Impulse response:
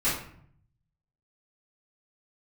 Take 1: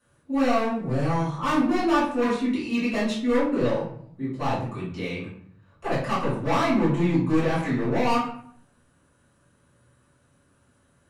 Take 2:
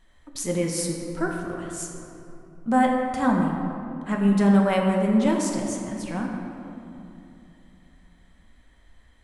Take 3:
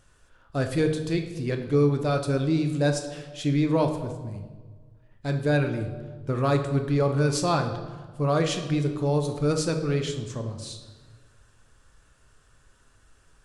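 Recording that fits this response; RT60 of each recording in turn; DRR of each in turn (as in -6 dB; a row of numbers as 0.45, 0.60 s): 1; 0.60, 2.9, 1.5 s; -12.0, -0.5, 5.0 dB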